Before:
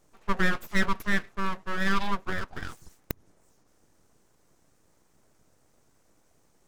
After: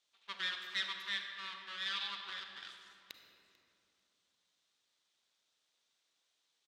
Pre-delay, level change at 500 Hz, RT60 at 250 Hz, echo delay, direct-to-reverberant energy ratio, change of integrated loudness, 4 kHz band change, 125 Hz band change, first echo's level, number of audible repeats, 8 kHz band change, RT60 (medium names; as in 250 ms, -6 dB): 33 ms, -25.0 dB, 3.3 s, 443 ms, 4.0 dB, -9.0 dB, +1.5 dB, under -30 dB, -22.0 dB, 1, -11.5 dB, 2.7 s